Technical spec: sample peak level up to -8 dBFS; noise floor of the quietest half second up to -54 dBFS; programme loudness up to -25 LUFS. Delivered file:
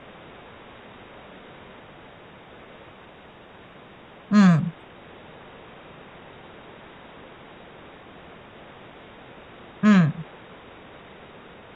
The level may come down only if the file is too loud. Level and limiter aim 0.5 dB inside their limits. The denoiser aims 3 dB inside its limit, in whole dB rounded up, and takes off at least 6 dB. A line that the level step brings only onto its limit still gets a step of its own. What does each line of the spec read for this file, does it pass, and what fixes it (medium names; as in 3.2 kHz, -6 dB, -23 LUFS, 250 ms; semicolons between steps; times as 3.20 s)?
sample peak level -7.0 dBFS: fail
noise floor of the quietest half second -47 dBFS: fail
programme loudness -20.0 LUFS: fail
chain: noise reduction 6 dB, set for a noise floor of -47 dBFS; trim -5.5 dB